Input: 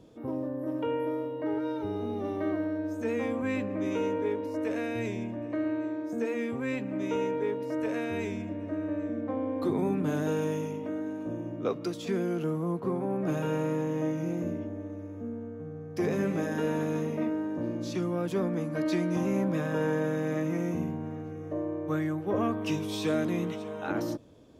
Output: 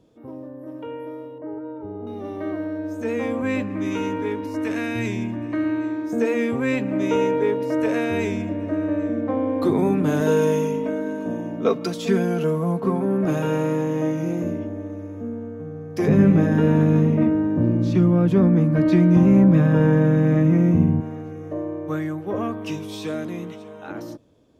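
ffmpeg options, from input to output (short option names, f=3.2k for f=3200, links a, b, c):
-filter_complex "[0:a]asettb=1/sr,asplit=3[a][b][c];[a]atrim=end=1.384[d];[b]atrim=start=1.38:end=2.07,asetpts=PTS-STARTPTS,afade=t=in:d=0.004:c=qsin,afade=t=out:st=0.686:d=0.004:c=qsin,lowpass=1.1k[e];[c]atrim=start=2.066[f];[d][e]acrossfade=d=0.004:c1=hsin:c2=qsin[g];[g][f]acrossfade=d=0.004:c1=qsin:c2=hsin,asettb=1/sr,asplit=3[h][i][j];[h]atrim=end=3.624[k];[i]atrim=start=3.62:end=6.13,asetpts=PTS-STARTPTS,afade=t=in:d=0.004:c=qsin,afade=t=out:st=2.506:d=0.004:c=qsin,equalizer=f=540:w=2.1:g=-12[l];[j]atrim=start=6.126[m];[k][l]acrossfade=d=0.004:c1=hsin:c2=qsin[n];[n][m]acrossfade=d=0.004:c1=qsin:c2=hsin,asettb=1/sr,asplit=3[o][p][q];[o]atrim=end=10.204[r];[p]atrim=start=10.2:end=13.25,asetpts=PTS-STARTPTS,afade=t=in:d=0.004:c=qsin,afade=t=out:st=3.046:d=0.004:c=qsin,aecho=1:1:4.5:0.65,atrim=end_sample=134505[s];[q]atrim=start=13.246[t];[r][s]acrossfade=d=0.004:c1=hsin:c2=qsin[u];[u][t]acrossfade=d=0.004:c1=qsin:c2=hsin,asettb=1/sr,asplit=3[v][w][x];[v]atrim=end=16.084[y];[w]atrim=start=16.08:end=21.01,asetpts=PTS-STARTPTS,afade=t=in:d=0.004:c=qsin,afade=t=out:st=4.926:d=0.004:c=qsin,bass=f=250:g=14,treble=f=4k:g=-10[z];[x]atrim=start=21.006[aa];[y][z]acrossfade=d=0.004:c1=hsin:c2=qsin[ab];[ab][aa]acrossfade=d=0.004:c1=qsin:c2=hsin,dynaudnorm=f=580:g=11:m=13.5dB,volume=-3.5dB"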